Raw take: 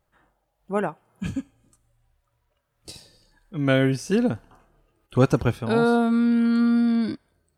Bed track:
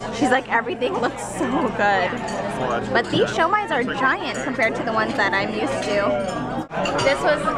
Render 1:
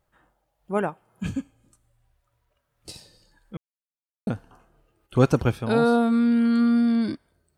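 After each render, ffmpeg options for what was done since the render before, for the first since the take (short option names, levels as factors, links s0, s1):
-filter_complex "[0:a]asplit=3[s0][s1][s2];[s0]atrim=end=3.57,asetpts=PTS-STARTPTS,afade=t=out:st=3.566:d=0.004:c=hsin[s3];[s1]atrim=start=3.57:end=4.27,asetpts=PTS-STARTPTS,volume=0[s4];[s2]atrim=start=4.27,asetpts=PTS-STARTPTS,afade=t=in:d=0.004:c=hsin[s5];[s3][s4][s5]concat=n=3:v=0:a=1"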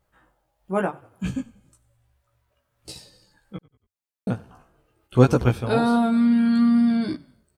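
-filter_complex "[0:a]asplit=2[s0][s1];[s1]adelay=16,volume=0.708[s2];[s0][s2]amix=inputs=2:normalize=0,asplit=4[s3][s4][s5][s6];[s4]adelay=93,afreqshift=-31,volume=0.075[s7];[s5]adelay=186,afreqshift=-62,volume=0.0339[s8];[s6]adelay=279,afreqshift=-93,volume=0.0151[s9];[s3][s7][s8][s9]amix=inputs=4:normalize=0"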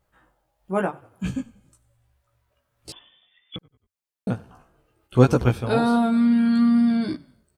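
-filter_complex "[0:a]asettb=1/sr,asplit=3[s0][s1][s2];[s0]atrim=end=2.924[s3];[s1]atrim=start=2.92:end=3.56,asetpts=PTS-STARTPTS,afade=t=in:d=0.004:c=qsin,afade=t=out:st=0.636:d=0.004:c=qsin,lowpass=f=3100:t=q:w=0.5098,lowpass=f=3100:t=q:w=0.6013,lowpass=f=3100:t=q:w=0.9,lowpass=f=3100:t=q:w=2.563,afreqshift=-3600[s4];[s2]atrim=start=3.556[s5];[s3][s4]acrossfade=d=0.004:c1=hsin:c2=qsin[s6];[s6][s5]acrossfade=d=0.004:c1=qsin:c2=hsin"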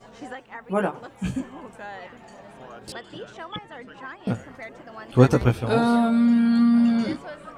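-filter_complex "[1:a]volume=0.106[s0];[0:a][s0]amix=inputs=2:normalize=0"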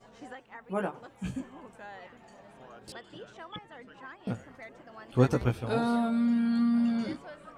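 -af "volume=0.398"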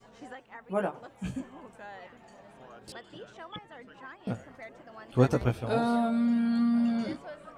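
-af "adynamicequalizer=threshold=0.00355:dfrequency=640:dqfactor=3.5:tfrequency=640:tqfactor=3.5:attack=5:release=100:ratio=0.375:range=2.5:mode=boostabove:tftype=bell"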